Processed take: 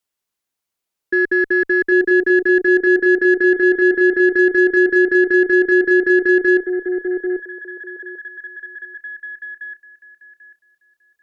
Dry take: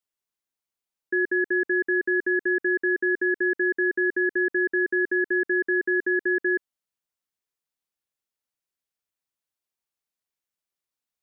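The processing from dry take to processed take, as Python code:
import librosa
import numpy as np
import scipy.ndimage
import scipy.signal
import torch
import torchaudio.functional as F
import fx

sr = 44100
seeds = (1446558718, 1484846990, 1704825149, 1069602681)

y = fx.echo_stepped(x, sr, ms=791, hz=450.0, octaves=0.7, feedback_pct=70, wet_db=-2)
y = fx.cheby_harmonics(y, sr, harmonics=(6,), levels_db=(-35,), full_scale_db=-12.5)
y = y * 10.0 ** (7.5 / 20.0)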